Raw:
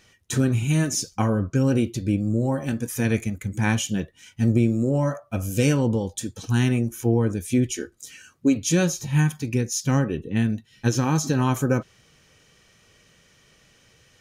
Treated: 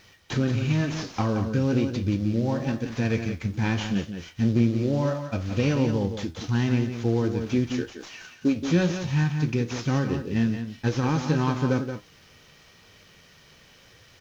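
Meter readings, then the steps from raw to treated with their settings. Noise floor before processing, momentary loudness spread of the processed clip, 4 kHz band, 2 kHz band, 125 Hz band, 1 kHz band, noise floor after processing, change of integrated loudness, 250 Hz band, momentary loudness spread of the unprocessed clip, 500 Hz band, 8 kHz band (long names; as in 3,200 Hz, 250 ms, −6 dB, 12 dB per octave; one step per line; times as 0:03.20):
−59 dBFS, 6 LU, −2.5 dB, −2.0 dB, −2.5 dB, −1.5 dB, −54 dBFS, −2.5 dB, −2.0 dB, 7 LU, −2.0 dB, −13.5 dB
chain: variable-slope delta modulation 32 kbit/s
in parallel at +1.5 dB: downward compressor, threshold −31 dBFS, peak gain reduction 15 dB
on the sum: bit-depth reduction 10 bits, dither none
on a send: single-tap delay 176 ms −8 dB
on the sum: flanger 1 Hz, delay 9.7 ms, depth 4.1 ms, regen +73%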